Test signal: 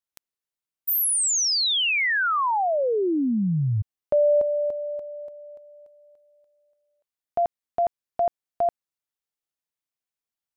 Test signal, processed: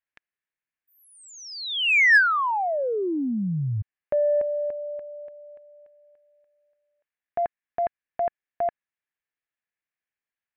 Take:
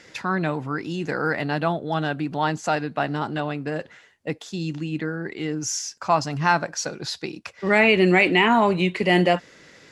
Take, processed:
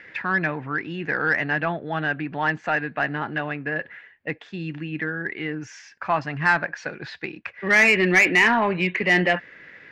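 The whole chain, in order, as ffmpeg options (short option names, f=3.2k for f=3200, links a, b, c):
-af "lowpass=f=2.3k:t=q:w=2.5,equalizer=f=1.7k:w=6.4:g=9.5,acontrast=37,volume=-8.5dB"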